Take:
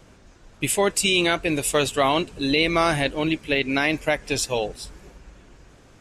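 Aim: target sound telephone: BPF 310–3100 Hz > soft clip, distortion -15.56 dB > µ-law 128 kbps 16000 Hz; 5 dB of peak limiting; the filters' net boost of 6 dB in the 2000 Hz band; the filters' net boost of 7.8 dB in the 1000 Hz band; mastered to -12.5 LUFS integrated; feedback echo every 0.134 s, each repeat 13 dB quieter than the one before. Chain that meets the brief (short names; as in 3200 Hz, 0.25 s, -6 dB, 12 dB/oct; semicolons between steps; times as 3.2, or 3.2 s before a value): bell 1000 Hz +8.5 dB; bell 2000 Hz +6.5 dB; limiter -6 dBFS; BPF 310–3100 Hz; feedback echo 0.134 s, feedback 22%, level -13 dB; soft clip -11 dBFS; gain +9.5 dB; µ-law 128 kbps 16000 Hz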